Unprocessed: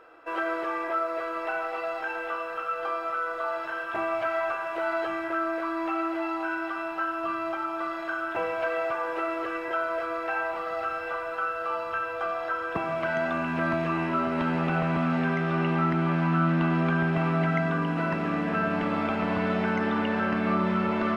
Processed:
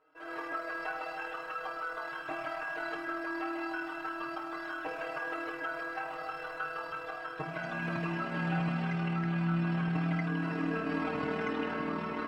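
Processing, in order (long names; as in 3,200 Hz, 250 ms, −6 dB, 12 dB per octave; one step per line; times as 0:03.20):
automatic gain control gain up to 15.5 dB
stiff-string resonator 150 Hz, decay 0.22 s, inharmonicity 0.002
time stretch by overlap-add 0.58×, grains 52 ms
level −6 dB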